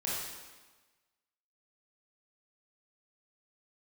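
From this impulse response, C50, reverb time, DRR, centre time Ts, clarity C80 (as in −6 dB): −2.0 dB, 1.3 s, −7.0 dB, 91 ms, 1.0 dB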